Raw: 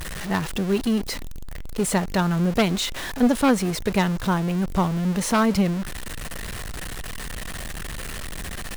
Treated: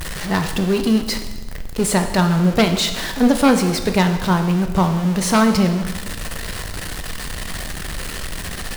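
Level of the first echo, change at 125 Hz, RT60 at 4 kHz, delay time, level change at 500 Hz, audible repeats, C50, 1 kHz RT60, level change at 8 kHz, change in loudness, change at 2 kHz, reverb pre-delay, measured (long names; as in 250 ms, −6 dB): no echo audible, +5.5 dB, 1.1 s, no echo audible, +5.0 dB, no echo audible, 9.0 dB, 1.2 s, +5.5 dB, +5.0 dB, +5.0 dB, 5 ms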